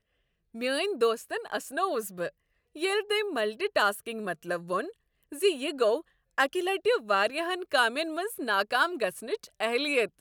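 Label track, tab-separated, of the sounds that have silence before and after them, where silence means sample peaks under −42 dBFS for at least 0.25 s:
0.550000	2.290000	sound
2.760000	4.910000	sound
5.320000	6.010000	sound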